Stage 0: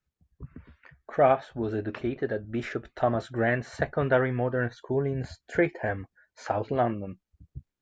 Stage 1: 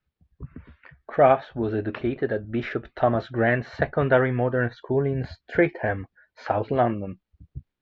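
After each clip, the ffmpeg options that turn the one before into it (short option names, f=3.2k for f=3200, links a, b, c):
-af "lowpass=f=4.3k:w=0.5412,lowpass=f=4.3k:w=1.3066,volume=4dB"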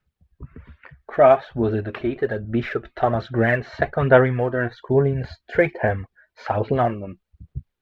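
-af "aphaser=in_gain=1:out_gain=1:delay=3.2:decay=0.42:speed=1.2:type=sinusoidal,equalizer=f=300:w=8:g=-7.5,volume=1.5dB"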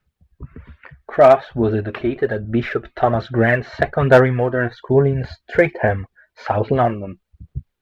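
-af "asoftclip=type=hard:threshold=-5.5dB,volume=3.5dB"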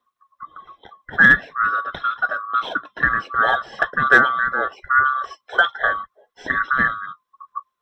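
-af "afftfilt=real='real(if(lt(b,960),b+48*(1-2*mod(floor(b/48),2)),b),0)':imag='imag(if(lt(b,960),b+48*(1-2*mod(floor(b/48),2)),b),0)':win_size=2048:overlap=0.75,volume=-2.5dB"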